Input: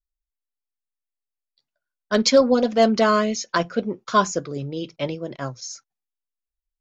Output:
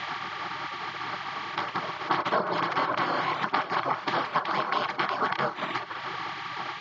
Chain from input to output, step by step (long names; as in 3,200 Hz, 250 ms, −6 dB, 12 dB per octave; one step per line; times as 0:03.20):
compressor on every frequency bin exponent 0.2
reverb reduction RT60 0.85 s
gate on every frequency bin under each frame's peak −15 dB weak
high-shelf EQ 2,100 Hz −9 dB
downward compressor 10 to 1, threshold −33 dBFS, peak gain reduction 15 dB
loudspeaker in its box 160–3,600 Hz, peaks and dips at 190 Hz +3 dB, 600 Hz +7 dB, 1,100 Hz +10 dB
backwards echo 508 ms −14.5 dB
level +7 dB